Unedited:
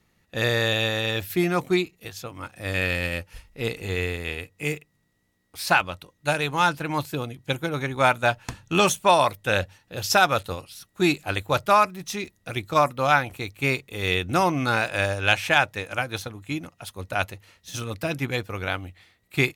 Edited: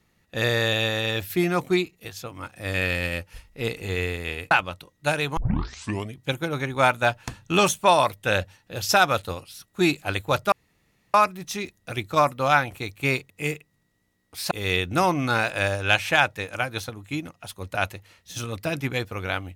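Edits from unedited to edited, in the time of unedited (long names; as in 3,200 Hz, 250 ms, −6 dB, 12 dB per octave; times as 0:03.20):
0:04.51–0:05.72: move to 0:13.89
0:06.58: tape start 0.77 s
0:11.73: splice in room tone 0.62 s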